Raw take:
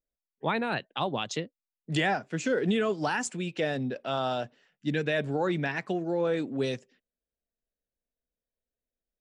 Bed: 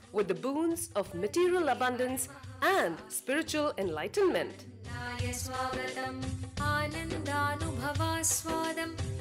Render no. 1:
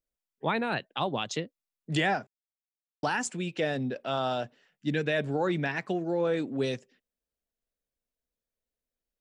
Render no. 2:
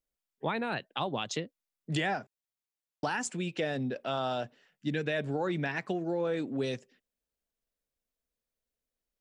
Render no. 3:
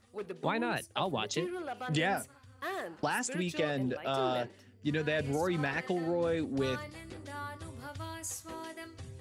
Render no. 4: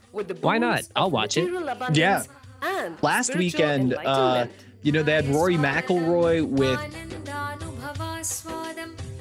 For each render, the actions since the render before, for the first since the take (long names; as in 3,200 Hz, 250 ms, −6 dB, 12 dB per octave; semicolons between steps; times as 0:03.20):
0:02.27–0:03.03: silence
downward compressor 2 to 1, threshold −30 dBFS, peak gain reduction 4.5 dB
mix in bed −10.5 dB
level +10.5 dB